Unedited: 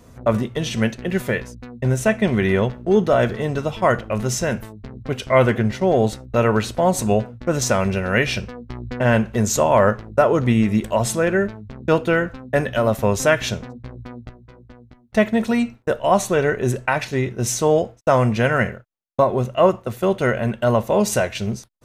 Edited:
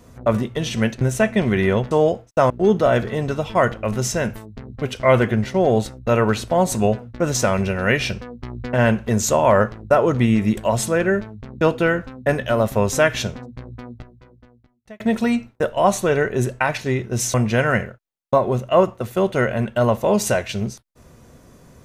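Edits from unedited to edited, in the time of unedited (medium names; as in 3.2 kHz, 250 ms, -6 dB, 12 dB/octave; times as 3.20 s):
1.01–1.87 s: delete
14.19–15.27 s: fade out
17.61–18.20 s: move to 2.77 s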